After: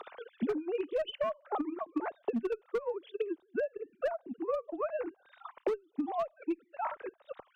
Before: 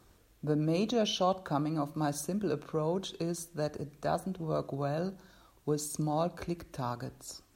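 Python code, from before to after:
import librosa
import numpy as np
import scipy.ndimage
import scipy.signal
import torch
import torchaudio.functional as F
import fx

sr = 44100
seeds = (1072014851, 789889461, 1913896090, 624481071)

y = fx.sine_speech(x, sr)
y = fx.transient(y, sr, attack_db=9, sustain_db=-9)
y = fx.clip_asym(y, sr, top_db=-20.0, bottom_db=-18.0)
y = fx.band_squash(y, sr, depth_pct=100)
y = F.gain(torch.from_numpy(y), -6.0).numpy()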